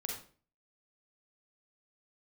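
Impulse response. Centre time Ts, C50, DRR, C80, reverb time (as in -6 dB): 36 ms, 2.5 dB, -0.5 dB, 8.0 dB, 0.40 s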